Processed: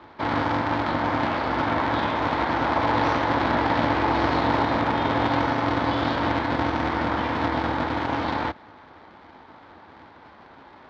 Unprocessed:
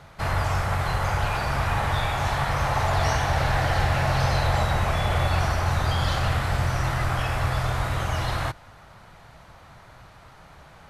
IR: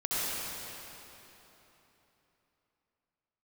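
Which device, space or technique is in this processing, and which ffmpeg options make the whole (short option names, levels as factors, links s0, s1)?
ring modulator pedal into a guitar cabinet: -af "aeval=exprs='val(0)*sgn(sin(2*PI*200*n/s))':c=same,highpass=75,equalizer=f=130:t=q:w=4:g=-9,equalizer=f=180:t=q:w=4:g=-4,equalizer=f=870:t=q:w=4:g=7,equalizer=f=2700:t=q:w=4:g=-6,lowpass=f=3900:w=0.5412,lowpass=f=3900:w=1.3066"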